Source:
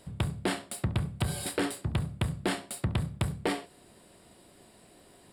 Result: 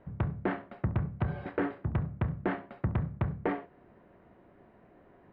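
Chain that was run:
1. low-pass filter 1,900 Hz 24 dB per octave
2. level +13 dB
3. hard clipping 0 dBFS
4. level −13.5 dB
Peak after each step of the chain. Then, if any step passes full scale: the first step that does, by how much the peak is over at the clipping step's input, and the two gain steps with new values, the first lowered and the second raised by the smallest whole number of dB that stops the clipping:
−15.5, −2.5, −2.5, −16.0 dBFS
no step passes full scale

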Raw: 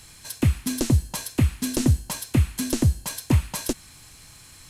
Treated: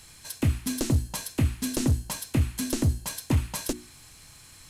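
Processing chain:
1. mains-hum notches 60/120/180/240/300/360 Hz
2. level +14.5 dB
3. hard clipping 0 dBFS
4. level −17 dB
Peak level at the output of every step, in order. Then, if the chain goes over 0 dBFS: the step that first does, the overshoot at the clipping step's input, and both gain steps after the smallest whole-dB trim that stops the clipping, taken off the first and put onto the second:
−9.5, +5.0, 0.0, −17.0 dBFS
step 2, 5.0 dB
step 2 +9.5 dB, step 4 −12 dB

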